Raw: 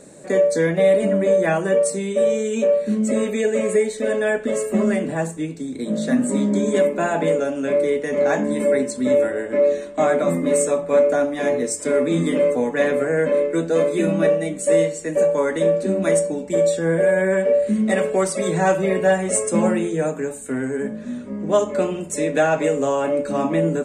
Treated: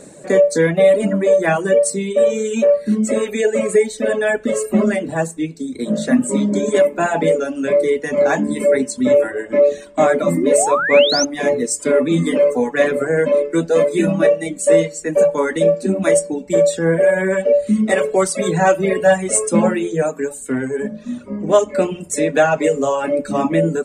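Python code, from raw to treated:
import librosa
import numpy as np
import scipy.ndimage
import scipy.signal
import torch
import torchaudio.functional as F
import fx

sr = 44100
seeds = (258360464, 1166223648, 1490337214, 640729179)

y = fx.dereverb_blind(x, sr, rt60_s=1.2)
y = fx.spec_paint(y, sr, seeds[0], shape='rise', start_s=10.36, length_s=0.89, low_hz=290.0, high_hz=6500.0, level_db=-24.0)
y = y * 10.0 ** (5.0 / 20.0)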